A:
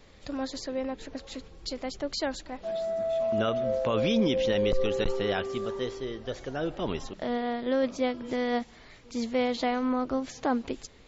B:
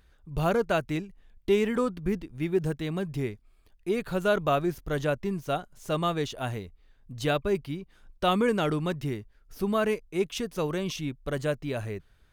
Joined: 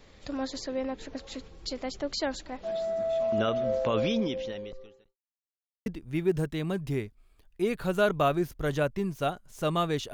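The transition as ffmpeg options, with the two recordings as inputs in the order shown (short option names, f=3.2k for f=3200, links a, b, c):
-filter_complex "[0:a]apad=whole_dur=10.13,atrim=end=10.13,asplit=2[a][b];[a]atrim=end=5.17,asetpts=PTS-STARTPTS,afade=t=out:st=3.96:d=1.21:c=qua[c];[b]atrim=start=5.17:end=5.86,asetpts=PTS-STARTPTS,volume=0[d];[1:a]atrim=start=2.13:end=6.4,asetpts=PTS-STARTPTS,afade=t=in:d=0.004:c=hsin[e];[c][d][e]concat=n=3:v=0:a=1"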